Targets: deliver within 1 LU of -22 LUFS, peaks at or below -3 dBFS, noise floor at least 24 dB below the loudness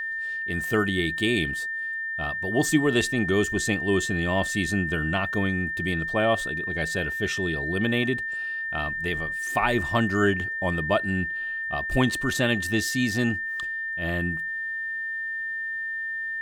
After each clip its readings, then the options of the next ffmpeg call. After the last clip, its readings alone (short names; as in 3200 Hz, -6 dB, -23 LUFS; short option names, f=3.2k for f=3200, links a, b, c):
steady tone 1800 Hz; tone level -28 dBFS; loudness -25.5 LUFS; peak -8.5 dBFS; loudness target -22.0 LUFS
-> -af "bandreject=f=1.8k:w=30"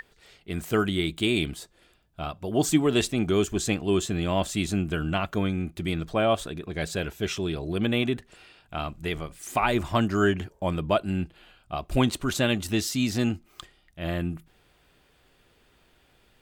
steady tone none; loudness -27.0 LUFS; peak -8.5 dBFS; loudness target -22.0 LUFS
-> -af "volume=5dB"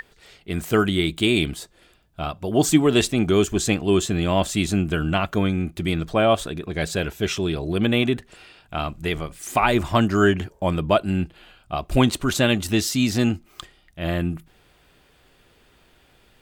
loudness -22.0 LUFS; peak -3.5 dBFS; noise floor -58 dBFS